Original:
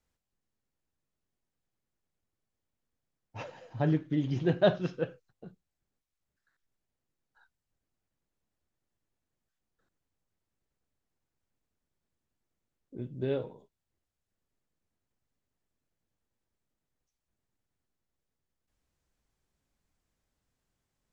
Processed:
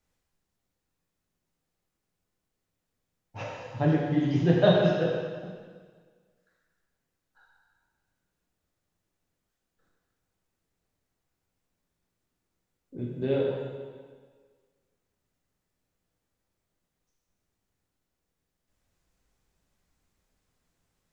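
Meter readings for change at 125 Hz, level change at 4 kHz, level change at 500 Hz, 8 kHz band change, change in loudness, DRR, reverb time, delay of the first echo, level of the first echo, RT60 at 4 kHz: +5.5 dB, +7.0 dB, +6.0 dB, can't be measured, +5.0 dB, −3.0 dB, 1.7 s, no echo audible, no echo audible, 1.6 s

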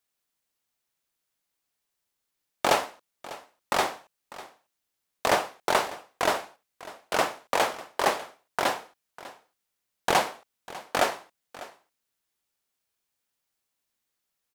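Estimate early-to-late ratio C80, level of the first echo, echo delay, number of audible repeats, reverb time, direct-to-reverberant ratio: no reverb audible, −18.0 dB, 598 ms, 1, no reverb audible, no reverb audible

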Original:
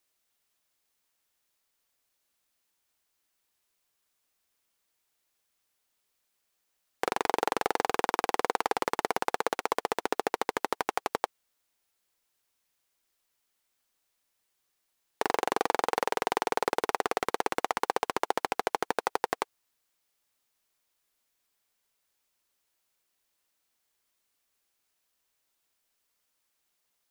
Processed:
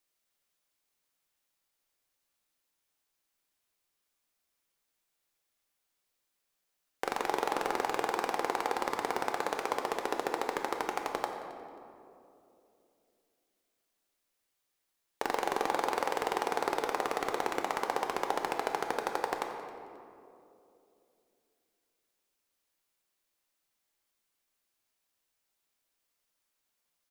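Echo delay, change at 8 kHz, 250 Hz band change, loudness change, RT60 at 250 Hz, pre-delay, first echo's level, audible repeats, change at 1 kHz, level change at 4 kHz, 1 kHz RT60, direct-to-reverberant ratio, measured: 268 ms, −3.5 dB, −1.5 dB, −3.0 dB, 3.5 s, 4 ms, −18.5 dB, 1, −2.5 dB, −3.5 dB, 2.4 s, 3.5 dB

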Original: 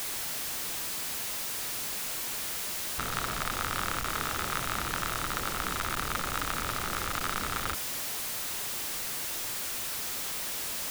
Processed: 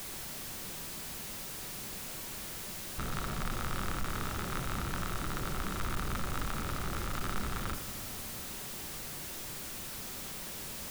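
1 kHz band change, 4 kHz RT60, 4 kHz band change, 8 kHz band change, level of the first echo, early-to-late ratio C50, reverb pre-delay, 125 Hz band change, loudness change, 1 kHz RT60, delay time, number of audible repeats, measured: −6.5 dB, 1.8 s, −8.0 dB, −8.0 dB, no echo audible, 12.5 dB, 5 ms, +2.5 dB, −6.5 dB, 2.7 s, no echo audible, no echo audible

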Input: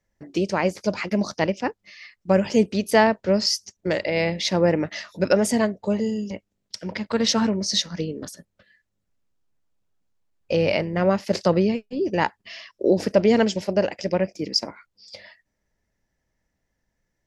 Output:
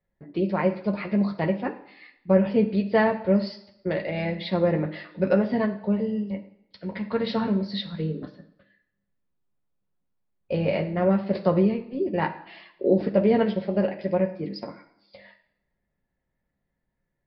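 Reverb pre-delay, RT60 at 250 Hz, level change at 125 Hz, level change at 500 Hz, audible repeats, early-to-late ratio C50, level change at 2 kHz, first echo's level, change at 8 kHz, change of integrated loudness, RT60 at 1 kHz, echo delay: 3 ms, 0.75 s, +0.5 dB, −2.5 dB, no echo audible, 12.0 dB, −5.5 dB, no echo audible, below −40 dB, −2.5 dB, 0.80 s, no echo audible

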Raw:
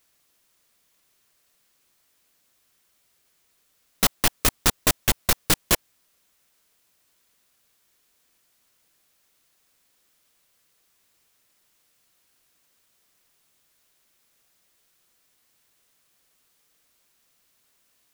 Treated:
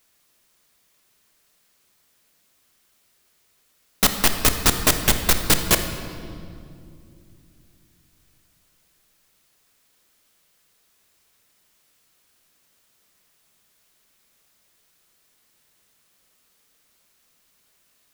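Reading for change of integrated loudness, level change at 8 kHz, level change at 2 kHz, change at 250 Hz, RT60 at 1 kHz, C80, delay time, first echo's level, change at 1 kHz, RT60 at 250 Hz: +2.5 dB, +3.0 dB, +3.5 dB, +4.0 dB, 2.2 s, 9.0 dB, no echo audible, no echo audible, +3.5 dB, 3.9 s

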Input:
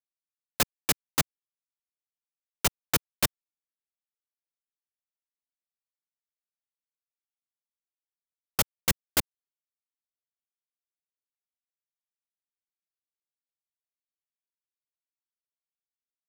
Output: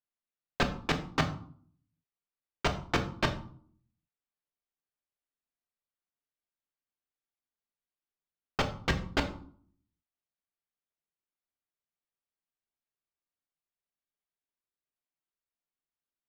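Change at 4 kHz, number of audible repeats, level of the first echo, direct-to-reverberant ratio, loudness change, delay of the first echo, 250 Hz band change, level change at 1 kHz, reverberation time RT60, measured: −4.5 dB, no echo audible, no echo audible, 5.0 dB, −4.5 dB, no echo audible, +3.5 dB, +2.0 dB, 0.55 s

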